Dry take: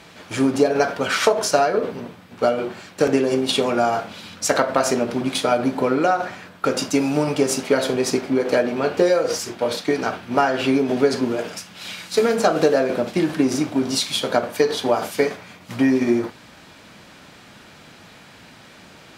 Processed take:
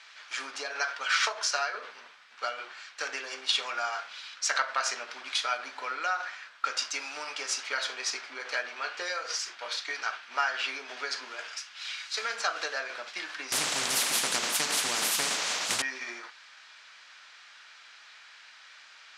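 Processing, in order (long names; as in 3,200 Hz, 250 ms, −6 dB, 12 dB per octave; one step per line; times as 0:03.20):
Chebyshev band-pass filter 1,400–5,900 Hz, order 2
0:13.52–0:15.82: every bin compressed towards the loudest bin 10 to 1
level −3 dB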